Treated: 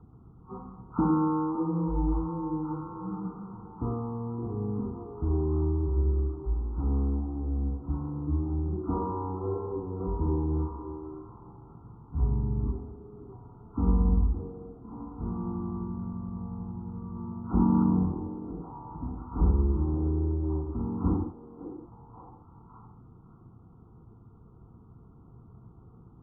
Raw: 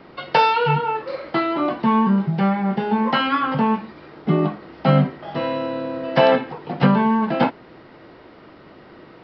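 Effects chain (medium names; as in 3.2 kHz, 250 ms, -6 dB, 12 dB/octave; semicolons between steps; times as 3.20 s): knee-point frequency compression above 2.3 kHz 1.5:1; dynamic bell 310 Hz, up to -6 dB, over -34 dBFS, Q 1.3; wide varispeed 0.352×; static phaser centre 2.2 kHz, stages 6; repeats whose band climbs or falls 563 ms, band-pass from 470 Hz, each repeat 0.7 oct, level -4.5 dB; trim -6 dB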